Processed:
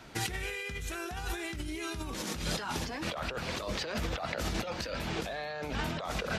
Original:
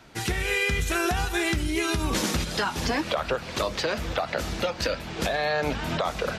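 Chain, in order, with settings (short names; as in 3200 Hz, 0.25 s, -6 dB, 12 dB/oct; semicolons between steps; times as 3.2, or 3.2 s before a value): negative-ratio compressor -32 dBFS, ratio -1; gain -4 dB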